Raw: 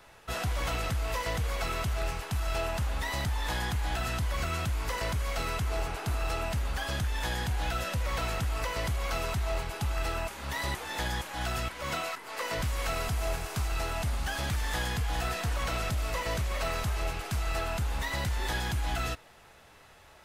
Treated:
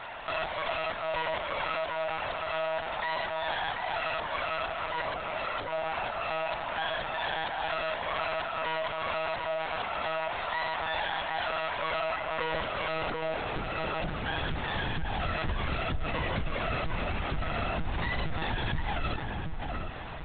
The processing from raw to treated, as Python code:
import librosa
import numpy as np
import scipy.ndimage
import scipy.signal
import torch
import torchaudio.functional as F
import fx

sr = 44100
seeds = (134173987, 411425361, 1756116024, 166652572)

y = fx.low_shelf(x, sr, hz=130.0, db=11.5, at=(4.85, 5.71))
y = np.clip(y, -10.0 ** (-31.0 / 20.0), 10.0 ** (-31.0 / 20.0))
y = fx.filter_sweep_highpass(y, sr, from_hz=650.0, to_hz=69.0, start_s=11.68, end_s=15.34, q=1.4)
y = fx.echo_filtered(y, sr, ms=735, feedback_pct=22, hz=1700.0, wet_db=-6.5)
y = fx.lpc_monotone(y, sr, seeds[0], pitch_hz=160.0, order=16)
y = fx.env_flatten(y, sr, amount_pct=50)